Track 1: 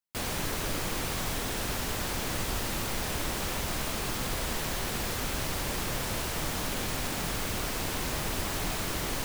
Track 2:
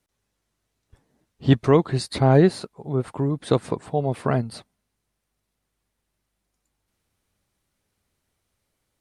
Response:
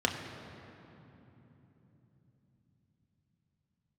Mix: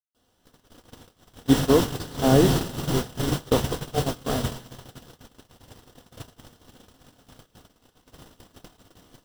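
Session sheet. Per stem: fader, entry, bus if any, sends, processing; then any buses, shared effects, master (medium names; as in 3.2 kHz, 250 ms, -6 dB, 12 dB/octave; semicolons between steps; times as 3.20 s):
+1.0 dB, 0.00 s, send -6 dB, none
-6.5 dB, 0.00 s, send -11 dB, none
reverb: on, RT60 3.5 s, pre-delay 3 ms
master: gate -20 dBFS, range -42 dB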